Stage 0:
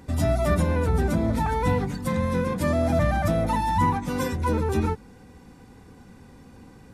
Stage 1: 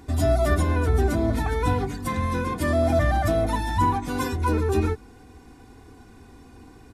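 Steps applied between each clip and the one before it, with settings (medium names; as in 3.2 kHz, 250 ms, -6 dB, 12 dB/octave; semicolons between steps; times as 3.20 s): comb 2.8 ms, depth 62%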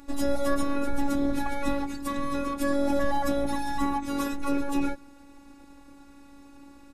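robot voice 281 Hz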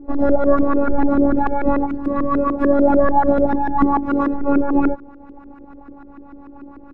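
LFO low-pass saw up 6.8 Hz 320–1600 Hz; trim +8.5 dB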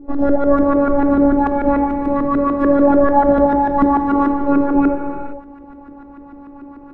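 reverberation, pre-delay 3 ms, DRR 4.5 dB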